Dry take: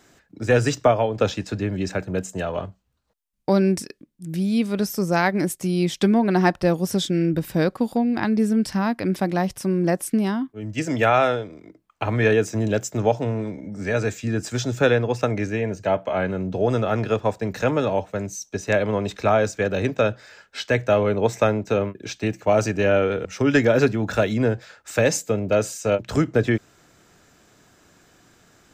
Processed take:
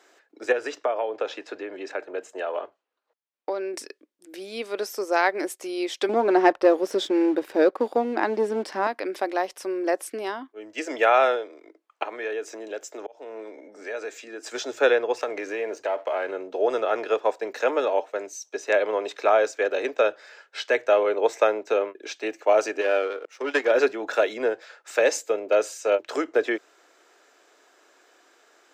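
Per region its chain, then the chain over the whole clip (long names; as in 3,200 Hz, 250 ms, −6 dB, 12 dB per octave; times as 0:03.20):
0:00.52–0:03.74: bass and treble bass −2 dB, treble −9 dB + downward compressor 2.5 to 1, threshold −23 dBFS
0:06.09–0:08.87: spectral tilt −2.5 dB per octave + leveller curve on the samples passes 1
0:12.03–0:14.46: high-pass filter 160 Hz + downward compressor 2 to 1, threshold −33 dBFS + volume swells 302 ms
0:15.17–0:16.31: leveller curve on the samples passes 1 + downward compressor 5 to 1, threshold −22 dBFS
0:22.81–0:23.71: high-pass filter 120 Hz 24 dB per octave + low-shelf EQ 170 Hz −5.5 dB + power curve on the samples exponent 1.4
whole clip: inverse Chebyshev high-pass filter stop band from 180 Hz, stop band 40 dB; high-shelf EQ 6,700 Hz −9.5 dB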